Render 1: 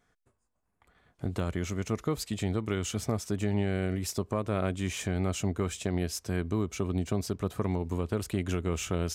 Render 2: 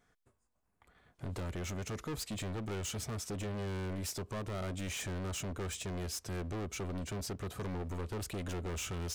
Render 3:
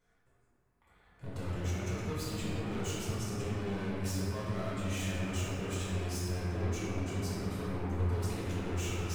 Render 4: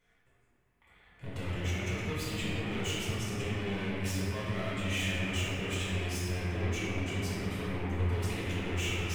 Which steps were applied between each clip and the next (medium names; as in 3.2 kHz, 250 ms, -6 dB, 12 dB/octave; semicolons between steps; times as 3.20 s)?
hard clipper -35 dBFS, distortion -4 dB; trim -1 dB
reverberation RT60 2.9 s, pre-delay 6 ms, DRR -9 dB; trim -7.5 dB
high-order bell 2.5 kHz +8 dB 1.1 oct; trim +1 dB